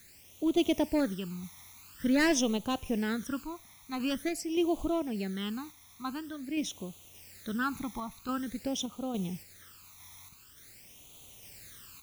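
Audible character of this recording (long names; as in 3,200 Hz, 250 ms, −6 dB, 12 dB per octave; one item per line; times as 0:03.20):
a quantiser's noise floor 8 bits, dither triangular
sample-and-hold tremolo
phaser sweep stages 12, 0.47 Hz, lowest notch 490–1,700 Hz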